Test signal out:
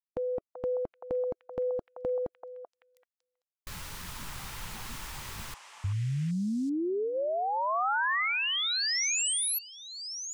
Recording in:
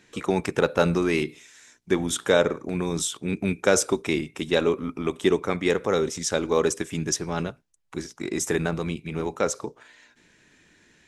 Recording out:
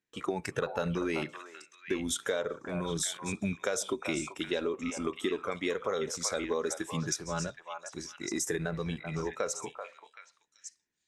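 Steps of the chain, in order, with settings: spectral noise reduction 9 dB; gate with hold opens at -46 dBFS; in parallel at +2 dB: peak limiter -16 dBFS; on the sum: compression 4:1, threshold -21 dBFS; repeats whose band climbs or falls 385 ms, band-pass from 910 Hz, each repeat 1.4 oct, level -2 dB; trim -8 dB

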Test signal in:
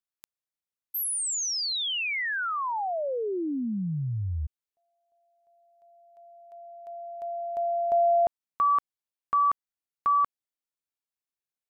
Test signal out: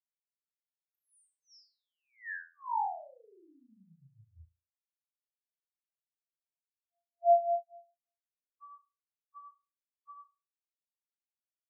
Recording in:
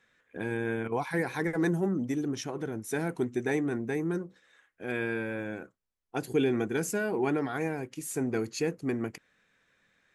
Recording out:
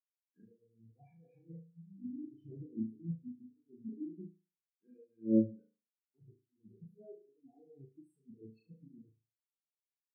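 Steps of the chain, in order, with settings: touch-sensitive phaser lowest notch 500 Hz, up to 1.3 kHz, full sweep at -30.5 dBFS; compressor with a negative ratio -36 dBFS, ratio -0.5; peak limiter -29 dBFS; on a send: flutter echo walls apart 6.2 m, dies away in 1.2 s; on the sum: spectral contrast expander 4:1; trim +2.5 dB

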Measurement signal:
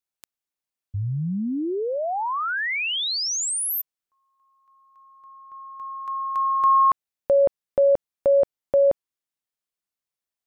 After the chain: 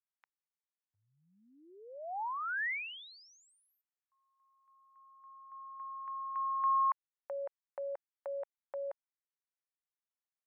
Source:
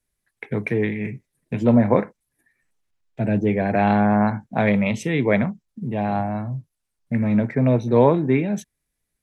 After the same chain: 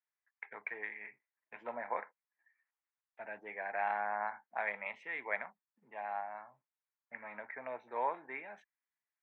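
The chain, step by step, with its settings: dynamic bell 1.1 kHz, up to -4 dB, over -34 dBFS, Q 2.2; Chebyshev band-pass 870–2000 Hz, order 2; trim -8 dB

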